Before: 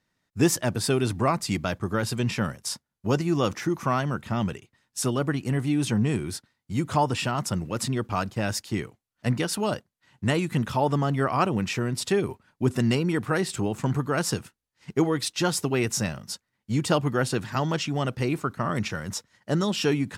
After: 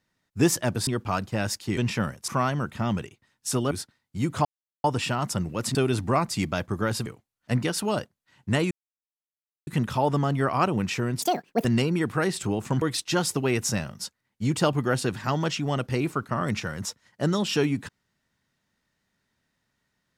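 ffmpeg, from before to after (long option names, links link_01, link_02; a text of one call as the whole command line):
ffmpeg -i in.wav -filter_complex "[0:a]asplit=12[link_01][link_02][link_03][link_04][link_05][link_06][link_07][link_08][link_09][link_10][link_11][link_12];[link_01]atrim=end=0.872[link_13];[link_02]atrim=start=7.908:end=8.812[link_14];[link_03]atrim=start=2.178:end=2.692[link_15];[link_04]atrim=start=3.788:end=5.222[link_16];[link_05]atrim=start=6.258:end=7,asetpts=PTS-STARTPTS,afade=type=out:start_time=0.738:duration=0.004:curve=hsin,apad=pad_dur=0.39[link_17];[link_06]atrim=start=7:end=7.912,asetpts=PTS-STARTPTS,afade=type=in:duration=0.004:curve=hsin[link_18];[link_07]atrim=start=0.868:end=2.182[link_19];[link_08]atrim=start=8.808:end=10.46,asetpts=PTS-STARTPTS,afade=type=out:start_time=1.648:duration=0.004:curve=hsin,apad=pad_dur=0.96[link_20];[link_09]atrim=start=10.46:end=12.014,asetpts=PTS-STARTPTS,afade=type=in:duration=0.004:curve=hsin[link_21];[link_10]atrim=start=12.01:end=12.78,asetpts=PTS-STARTPTS,asetrate=79380,aresample=44100[link_22];[link_11]atrim=start=12.776:end=13.952[link_23];[link_12]atrim=start=15.098[link_24];[link_13][link_14]acrossfade=duration=0.004:curve1=hsin:curve2=hsin[link_25];[link_25][link_15]acrossfade=duration=0.004:curve1=hsin:curve2=hsin[link_26];[link_26][link_16]acrossfade=duration=0.004:curve1=hsin:curve2=hsin[link_27];[link_17][link_18]concat=n=2:v=0:a=1[link_28];[link_27][link_28]acrossfade=duration=0.004:curve1=hsin:curve2=hsin[link_29];[link_29][link_19]acrossfade=duration=0.004:curve1=hsin:curve2=hsin[link_30];[link_20][link_21]concat=n=2:v=0:a=1[link_31];[link_30][link_31]acrossfade=duration=0.004:curve1=hsin:curve2=hsin[link_32];[link_32][link_22]acrossfade=duration=0.004:curve1=hsin:curve2=hsin[link_33];[link_33][link_23]acrossfade=duration=0.004:curve1=hsin:curve2=hsin[link_34];[link_34][link_24]acrossfade=duration=0.004:curve1=hsin:curve2=hsin" out.wav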